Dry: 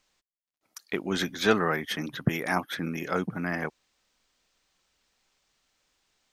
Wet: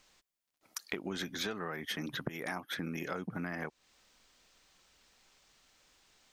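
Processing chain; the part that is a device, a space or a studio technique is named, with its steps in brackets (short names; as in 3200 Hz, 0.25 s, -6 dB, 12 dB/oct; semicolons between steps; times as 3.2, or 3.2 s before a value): serial compression, leveller first (compressor 2.5:1, threshold -29 dBFS, peak gain reduction 9 dB; compressor 5:1, threshold -42 dBFS, peak gain reduction 16.5 dB); gain +6 dB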